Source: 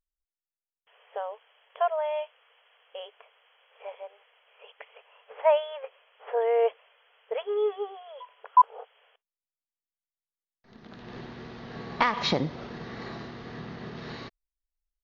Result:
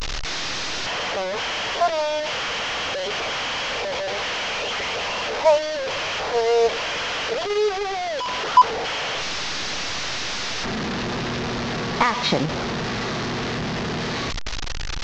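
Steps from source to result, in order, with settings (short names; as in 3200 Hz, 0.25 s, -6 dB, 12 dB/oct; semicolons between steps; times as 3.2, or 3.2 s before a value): delta modulation 32 kbps, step -25 dBFS; gain +5 dB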